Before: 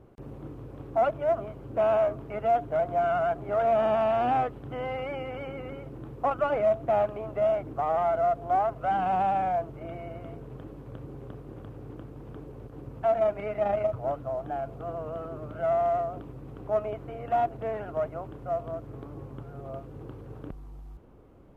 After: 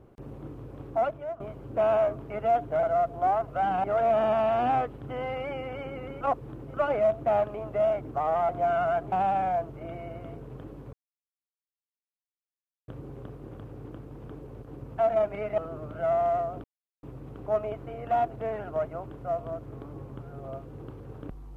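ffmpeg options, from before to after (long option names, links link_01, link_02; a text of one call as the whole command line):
ffmpeg -i in.wav -filter_complex "[0:a]asplit=11[link_01][link_02][link_03][link_04][link_05][link_06][link_07][link_08][link_09][link_10][link_11];[link_01]atrim=end=1.4,asetpts=PTS-STARTPTS,afade=type=out:start_time=0.88:duration=0.52:silence=0.149624[link_12];[link_02]atrim=start=1.4:end=2.832,asetpts=PTS-STARTPTS,afade=type=in:duration=0.004:curve=hsin:silence=0.149624[link_13];[link_03]atrim=start=8.108:end=9.122[link_14];[link_04]atrim=start=3.458:end=5.832[link_15];[link_05]atrim=start=5.828:end=6.362,asetpts=PTS-STARTPTS,areverse[link_16];[link_06]atrim=start=6.358:end=8.112[link_17];[link_07]atrim=start=2.828:end=3.462[link_18];[link_08]atrim=start=9.118:end=10.93,asetpts=PTS-STARTPTS,afade=type=out:start_time=1.808:duration=0.004:curve=hsin,apad=pad_dur=1.95[link_19];[link_09]atrim=start=10.93:end=13.632,asetpts=PTS-STARTPTS,afade=type=in:duration=0.004:curve=hsin[link_20];[link_10]atrim=start=15.178:end=16.24,asetpts=PTS-STARTPTS,afade=type=out:start_time=1.058:duration=0.004:curve=hsin,apad=pad_dur=0.39[link_21];[link_11]atrim=start=16.24,asetpts=PTS-STARTPTS,afade=type=in:duration=0.004:curve=hsin[link_22];[link_12][link_13]concat=n=2:v=0:a=1[link_23];[link_23][link_14]acrossfade=duration=0.004:curve1=hsin:curve2=hsin[link_24];[link_24][link_15]acrossfade=duration=0.004:curve1=hsin:curve2=hsin[link_25];[link_25][link_16]acrossfade=duration=0.004:curve1=hsin:curve2=hsin[link_26];[link_26][link_17]acrossfade=duration=0.004:curve1=hsin:curve2=hsin[link_27];[link_27][link_18]acrossfade=duration=0.004:curve1=hsin:curve2=hsin[link_28];[link_19][link_20]concat=n=2:v=0:a=1[link_29];[link_28][link_29]acrossfade=duration=0.004:curve1=hsin:curve2=hsin[link_30];[link_21][link_22]concat=n=2:v=0:a=1[link_31];[link_30][link_31]acrossfade=duration=0.004:curve1=hsin:curve2=hsin" out.wav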